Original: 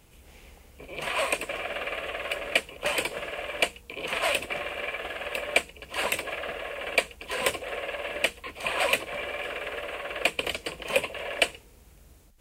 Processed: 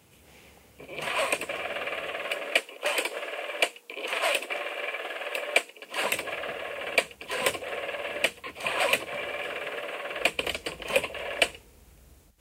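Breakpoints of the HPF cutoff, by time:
HPF 24 dB/oct
2.03 s 83 Hz
2.6 s 300 Hz
5.79 s 300 Hz
6.22 s 83 Hz
9.54 s 83 Hz
10.04 s 180 Hz
10.26 s 44 Hz

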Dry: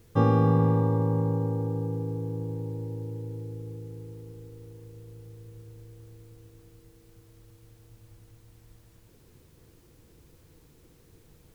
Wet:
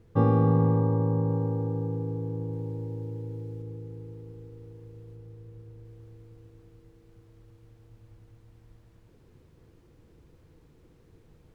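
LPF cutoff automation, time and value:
LPF 6 dB/oct
1200 Hz
from 1.3 s 2100 Hz
from 2.53 s 3000 Hz
from 3.62 s 1900 Hz
from 5.16 s 1400 Hz
from 5.85 s 1900 Hz

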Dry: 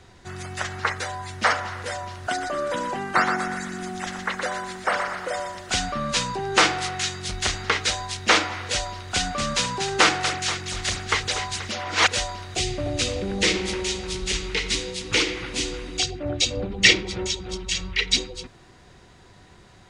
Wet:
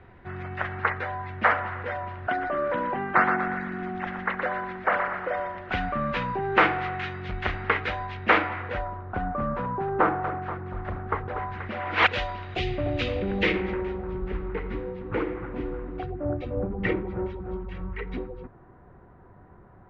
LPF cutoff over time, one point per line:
LPF 24 dB/oct
8.55 s 2300 Hz
9.02 s 1300 Hz
11.27 s 1300 Hz
12.06 s 2900 Hz
13.37 s 2900 Hz
13.97 s 1400 Hz

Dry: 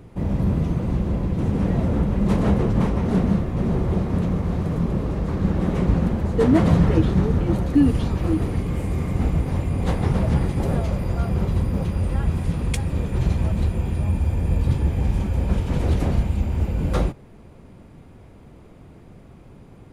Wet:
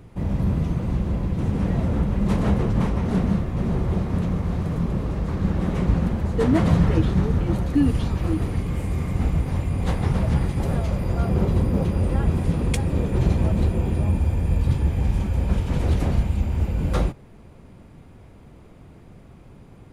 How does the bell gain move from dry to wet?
bell 380 Hz 2.2 oct
10.77 s -3.5 dB
11.39 s +5 dB
14 s +5 dB
14.48 s -2 dB

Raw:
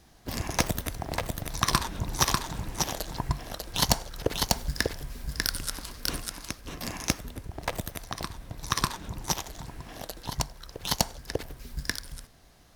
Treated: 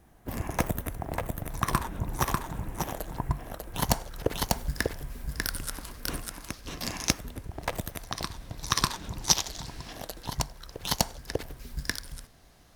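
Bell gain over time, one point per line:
bell 4700 Hz 1.4 oct
-14.5 dB
from 3.88 s -6.5 dB
from 6.53 s +4 dB
from 7.11 s -2.5 dB
from 8.12 s +3.5 dB
from 9.23 s +10 dB
from 9.93 s -1 dB

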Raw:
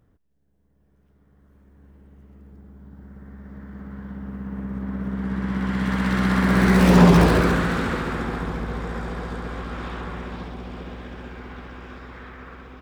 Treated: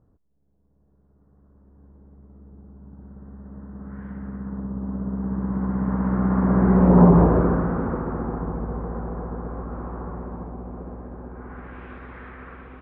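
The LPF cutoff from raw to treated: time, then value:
LPF 24 dB/oct
3.81 s 1200 Hz
4.05 s 2500 Hz
4.73 s 1100 Hz
11.29 s 1100 Hz
11.8 s 2600 Hz

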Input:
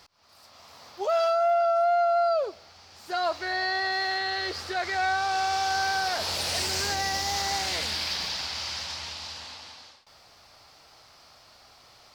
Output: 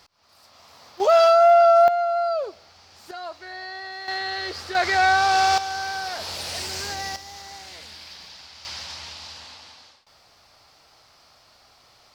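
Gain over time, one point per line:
0 dB
from 1 s +9 dB
from 1.88 s 0 dB
from 3.11 s -8 dB
from 4.08 s +0.5 dB
from 4.75 s +8 dB
from 5.58 s -2.5 dB
from 7.16 s -12 dB
from 8.65 s -1 dB

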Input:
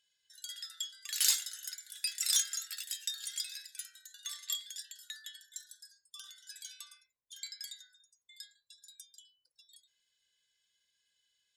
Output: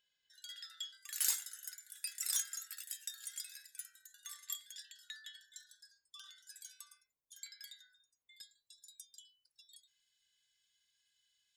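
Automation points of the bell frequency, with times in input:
bell -12 dB 1.8 oct
10000 Hz
from 0.97 s 3900 Hz
from 4.72 s 12000 Hz
from 6.42 s 3200 Hz
from 7.46 s 7200 Hz
from 8.41 s 1700 Hz
from 9.13 s 460 Hz

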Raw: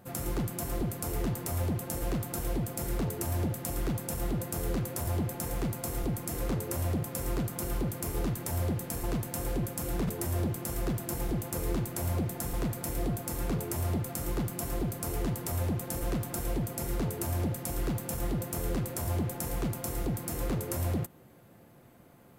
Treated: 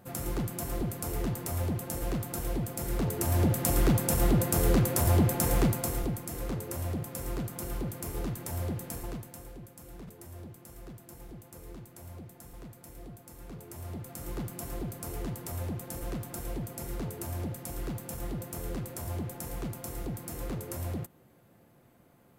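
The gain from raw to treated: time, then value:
2.83 s -0.5 dB
3.65 s +7.5 dB
5.61 s +7.5 dB
6.25 s -3 dB
8.93 s -3 dB
9.54 s -15 dB
13.38 s -15 dB
14.39 s -4.5 dB

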